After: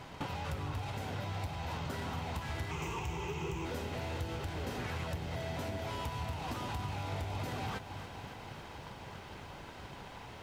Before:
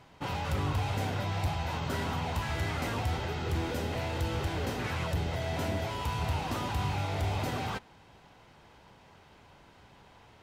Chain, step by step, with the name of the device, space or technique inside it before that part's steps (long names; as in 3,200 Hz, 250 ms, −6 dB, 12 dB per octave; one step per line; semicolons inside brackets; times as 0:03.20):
0:02.71–0:03.65: EQ curve with evenly spaced ripples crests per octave 0.73, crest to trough 16 dB
drum-bus smash (transient designer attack +8 dB, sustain +3 dB; downward compressor 6 to 1, threshold −43 dBFS, peak gain reduction 19.5 dB; soft clipping −38 dBFS, distortion −19 dB)
feedback echo at a low word length 278 ms, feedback 80%, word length 12 bits, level −13 dB
level +7.5 dB